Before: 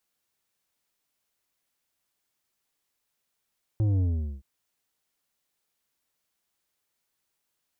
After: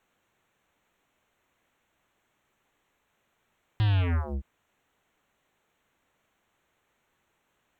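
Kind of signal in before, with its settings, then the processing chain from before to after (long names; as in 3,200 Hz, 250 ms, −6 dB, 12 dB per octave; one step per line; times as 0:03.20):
bass drop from 110 Hz, over 0.62 s, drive 8.5 dB, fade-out 0.42 s, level −22 dB
adaptive Wiener filter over 9 samples
in parallel at −10 dB: sine wavefolder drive 19 dB, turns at −21.5 dBFS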